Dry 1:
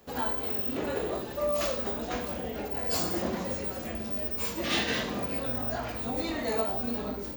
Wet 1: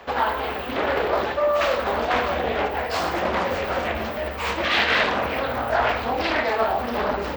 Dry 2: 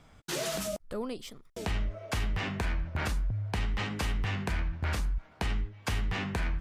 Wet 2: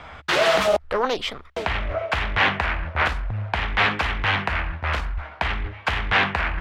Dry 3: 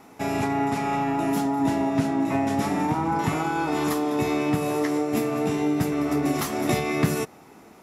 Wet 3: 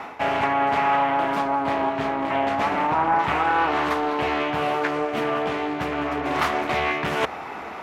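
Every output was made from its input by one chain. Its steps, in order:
peaking EQ 72 Hz +14 dB 0.23 oct; reverse; compression 16:1, threshold -33 dBFS; reverse; three-band isolator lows -15 dB, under 580 Hz, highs -22 dB, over 3.4 kHz; loudspeaker Doppler distortion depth 0.48 ms; normalise loudness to -23 LUFS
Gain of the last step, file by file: +21.5 dB, +23.5 dB, +20.0 dB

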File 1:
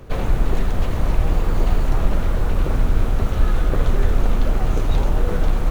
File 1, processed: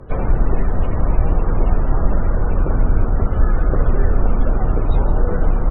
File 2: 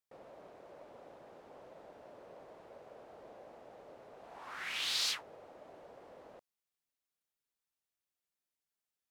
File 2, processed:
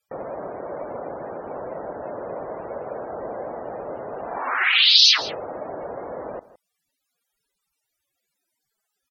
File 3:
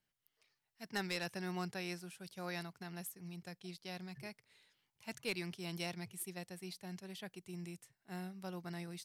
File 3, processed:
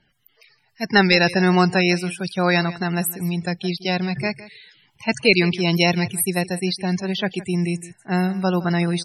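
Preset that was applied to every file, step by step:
loudest bins only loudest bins 64; low-pass that closes with the level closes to 2.8 kHz; delay 163 ms -17.5 dB; peak normalisation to -2 dBFS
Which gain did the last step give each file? +2.5 dB, +22.0 dB, +25.0 dB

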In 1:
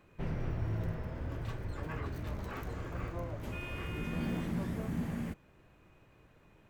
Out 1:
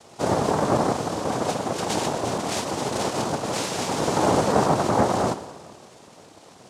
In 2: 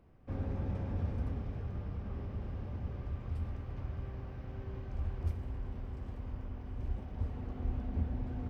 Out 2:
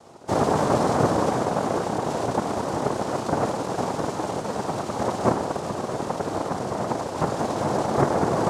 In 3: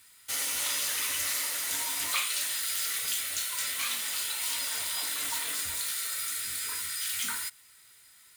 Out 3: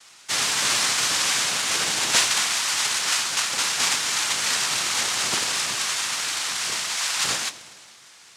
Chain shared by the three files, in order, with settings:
spring tank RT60 1.8 s, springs 51 ms, chirp 50 ms, DRR 11.5 dB; noise-vocoded speech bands 2; peak normalisation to -6 dBFS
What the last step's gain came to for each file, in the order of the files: +15.0 dB, +18.0 dB, +11.0 dB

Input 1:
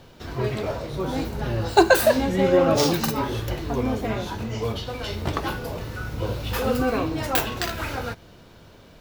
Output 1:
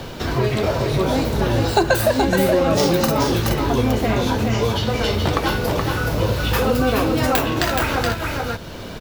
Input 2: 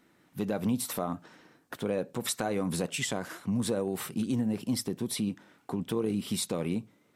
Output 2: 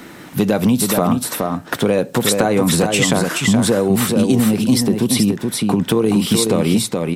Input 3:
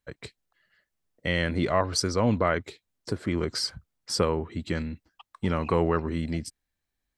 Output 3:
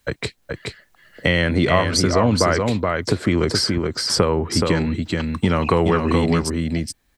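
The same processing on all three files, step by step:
compression 2:1, threshold -28 dBFS; on a send: delay 424 ms -5 dB; on the sum: three bands compressed up and down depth 40%; peak normalisation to -1.5 dBFS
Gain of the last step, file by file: +9.0 dB, +16.0 dB, +12.0 dB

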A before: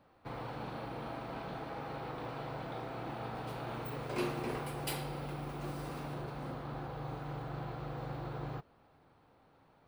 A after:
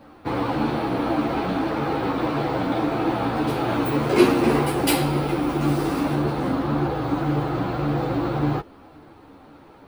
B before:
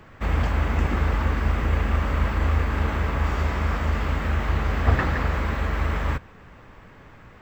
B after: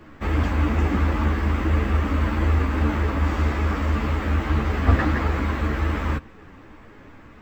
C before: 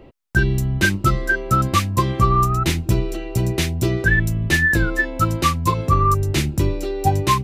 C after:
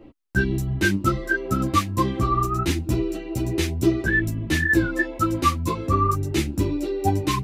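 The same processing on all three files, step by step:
peaking EQ 300 Hz +10 dB 0.48 oct; three-phase chorus; normalise loudness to -23 LUFS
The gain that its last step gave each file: +19.0 dB, +3.0 dB, -2.0 dB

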